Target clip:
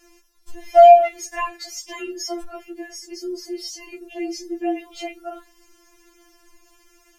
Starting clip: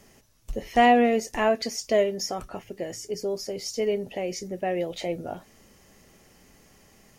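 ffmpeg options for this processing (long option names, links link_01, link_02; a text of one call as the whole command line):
ffmpeg -i in.wav -af "afreqshift=-32,afftfilt=real='re*4*eq(mod(b,16),0)':imag='im*4*eq(mod(b,16),0)':win_size=2048:overlap=0.75,volume=3dB" out.wav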